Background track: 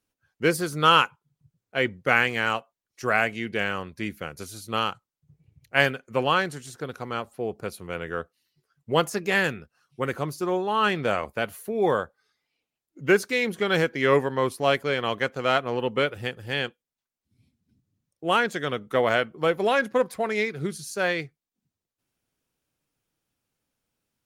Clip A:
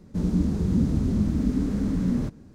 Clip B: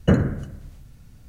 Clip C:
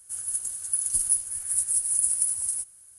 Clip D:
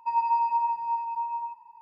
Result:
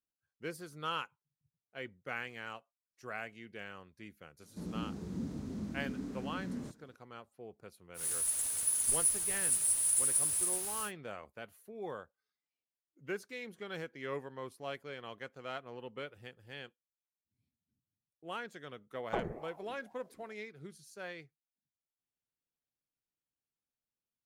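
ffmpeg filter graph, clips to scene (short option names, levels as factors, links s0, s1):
-filter_complex "[0:a]volume=0.106[s0];[1:a]highpass=f=310:p=1[s1];[3:a]aeval=exprs='val(0)+0.5*0.0531*sgn(val(0))':c=same[s2];[2:a]aeval=exprs='val(0)*sin(2*PI*570*n/s+570*0.55/2.2*sin(2*PI*2.2*n/s))':c=same[s3];[s1]atrim=end=2.54,asetpts=PTS-STARTPTS,volume=0.282,afade=t=in:d=0.004:c=hsin,afade=t=out:st=2.536:d=0.004:c=hsin,adelay=4420[s4];[s2]atrim=end=2.98,asetpts=PTS-STARTPTS,volume=0.398,afade=t=in:d=0.1,afade=t=out:st=2.88:d=0.1,adelay=350154S[s5];[s3]atrim=end=1.28,asetpts=PTS-STARTPTS,volume=0.158,afade=t=in:d=0.004:c=hsin,afade=t=out:st=1.276:d=0.004:c=hsin,adelay=19050[s6];[s0][s4][s5][s6]amix=inputs=4:normalize=0"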